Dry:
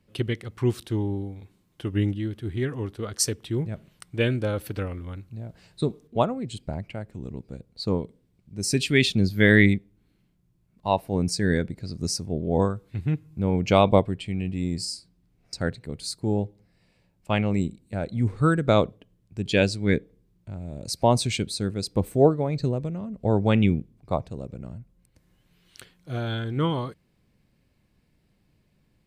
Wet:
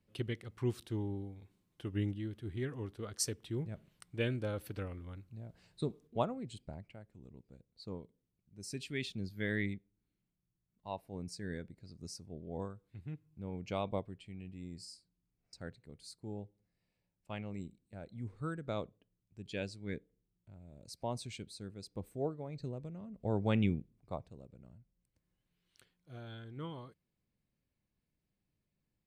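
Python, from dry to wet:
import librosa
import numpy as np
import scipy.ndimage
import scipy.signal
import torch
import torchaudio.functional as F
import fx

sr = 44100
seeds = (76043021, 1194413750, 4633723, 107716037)

y = fx.gain(x, sr, db=fx.line((6.4, -11.0), (7.07, -19.0), (22.3, -19.0), (23.6, -10.0), (24.51, -19.0)))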